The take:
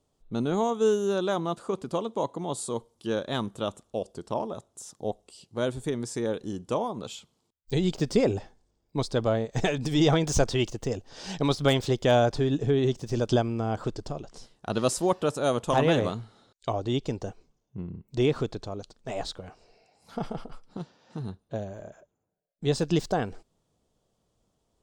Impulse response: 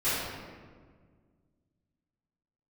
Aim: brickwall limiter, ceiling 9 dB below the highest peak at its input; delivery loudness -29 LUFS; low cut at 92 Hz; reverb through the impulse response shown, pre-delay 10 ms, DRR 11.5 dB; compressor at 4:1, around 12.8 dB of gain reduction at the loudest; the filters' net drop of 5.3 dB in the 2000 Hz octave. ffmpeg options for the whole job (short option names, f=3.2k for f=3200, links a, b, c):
-filter_complex "[0:a]highpass=92,equalizer=f=2k:t=o:g=-7.5,acompressor=threshold=-34dB:ratio=4,alimiter=level_in=4dB:limit=-24dB:level=0:latency=1,volume=-4dB,asplit=2[a][b];[1:a]atrim=start_sample=2205,adelay=10[c];[b][c]afir=irnorm=-1:irlink=0,volume=-23.5dB[d];[a][d]amix=inputs=2:normalize=0,volume=11dB"